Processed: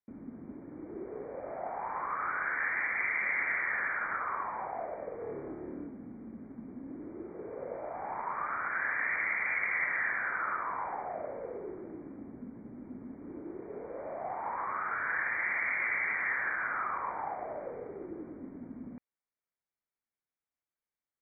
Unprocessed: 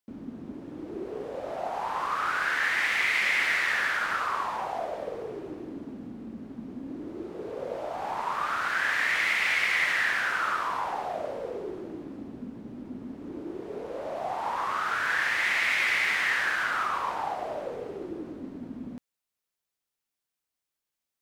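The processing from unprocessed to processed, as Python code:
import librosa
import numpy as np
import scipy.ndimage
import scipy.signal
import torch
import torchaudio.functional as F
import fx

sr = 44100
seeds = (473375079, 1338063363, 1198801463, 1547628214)

y = fx.brickwall_lowpass(x, sr, high_hz=2400.0)
y = fx.room_flutter(y, sr, wall_m=4.7, rt60_s=0.61, at=(5.17, 5.87))
y = y * librosa.db_to_amplitude(-5.5)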